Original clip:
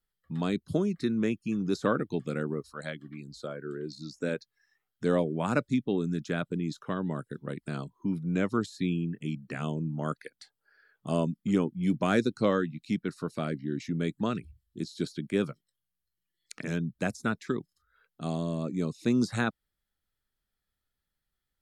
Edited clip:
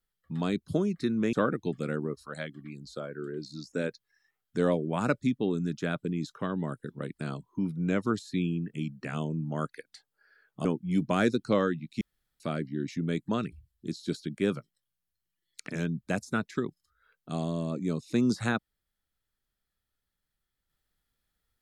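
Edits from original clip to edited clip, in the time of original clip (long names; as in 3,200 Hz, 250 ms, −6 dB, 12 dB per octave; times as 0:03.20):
0:01.33–0:01.80: remove
0:11.12–0:11.57: remove
0:12.93–0:13.32: fill with room tone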